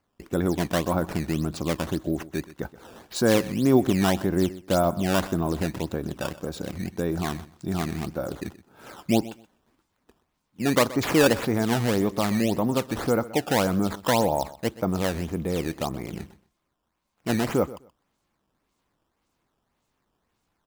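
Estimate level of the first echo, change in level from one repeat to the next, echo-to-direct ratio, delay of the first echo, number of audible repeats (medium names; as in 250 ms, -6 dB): -17.5 dB, -15.5 dB, -17.5 dB, 126 ms, 2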